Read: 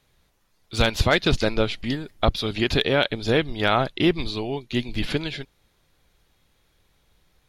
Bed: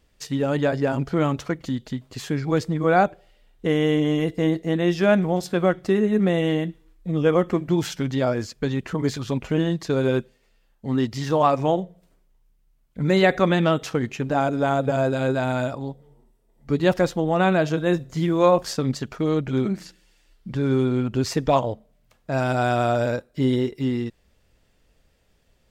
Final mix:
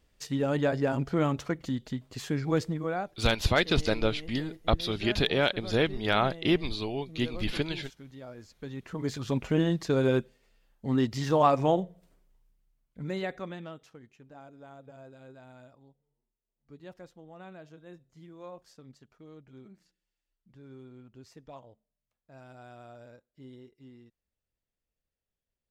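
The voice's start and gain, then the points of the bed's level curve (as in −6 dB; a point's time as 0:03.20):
2.45 s, −5.0 dB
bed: 0:02.65 −5 dB
0:03.23 −23 dB
0:08.26 −23 dB
0:09.34 −3.5 dB
0:12.35 −3.5 dB
0:14.03 −28 dB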